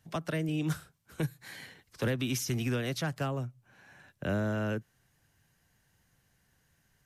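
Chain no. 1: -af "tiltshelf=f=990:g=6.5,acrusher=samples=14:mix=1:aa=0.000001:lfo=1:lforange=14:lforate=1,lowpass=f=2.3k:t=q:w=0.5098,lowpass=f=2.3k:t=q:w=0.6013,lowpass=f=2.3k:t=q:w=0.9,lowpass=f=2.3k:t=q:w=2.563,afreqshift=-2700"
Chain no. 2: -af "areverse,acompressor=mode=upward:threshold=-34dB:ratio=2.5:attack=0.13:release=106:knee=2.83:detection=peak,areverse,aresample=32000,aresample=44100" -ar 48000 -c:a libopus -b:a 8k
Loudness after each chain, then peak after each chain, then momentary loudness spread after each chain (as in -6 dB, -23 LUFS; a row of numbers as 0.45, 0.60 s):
-25.0, -35.0 LUFS; -14.0, -20.5 dBFS; 6, 17 LU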